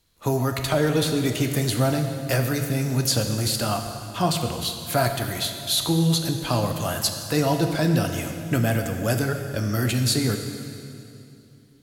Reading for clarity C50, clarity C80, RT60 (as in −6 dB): 6.5 dB, 7.0 dB, 2.7 s